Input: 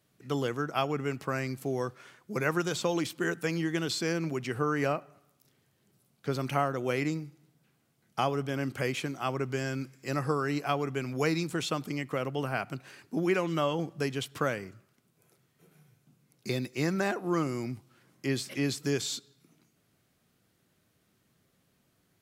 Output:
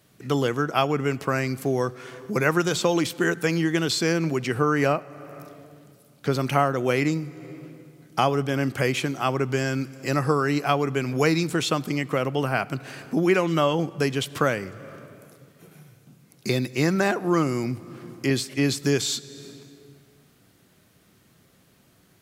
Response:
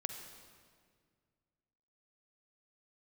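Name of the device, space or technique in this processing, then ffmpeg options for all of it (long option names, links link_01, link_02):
ducked reverb: -filter_complex "[0:a]asettb=1/sr,asplit=3[link_01][link_02][link_03];[link_01]atrim=end=18.304[link_04];[link_02]atrim=start=18.3:end=18.82,asetpts=PTS-STARTPTS,afade=type=in:duration=0.004:curve=qsin,afade=type=out:start_time=0.516:duration=0.004:curve=qsin,agate=range=-33dB:threshold=-34dB:ratio=3:detection=peak[link_05];[link_03]atrim=start=18.816[link_06];[link_04][link_05]acrossfade=duration=0.004:curve1=hsin:curve2=qsin[link_07];[link_07][link_06]acrossfade=duration=0.004:curve1=qsin:curve2=hsin,asplit=3[link_08][link_09][link_10];[1:a]atrim=start_sample=2205[link_11];[link_09][link_11]afir=irnorm=-1:irlink=0[link_12];[link_10]apad=whole_len=979816[link_13];[link_12][link_13]sidechaincompress=threshold=-45dB:ratio=8:attack=50:release=325,volume=-1dB[link_14];[link_08][link_14]amix=inputs=2:normalize=0,volume=6.5dB"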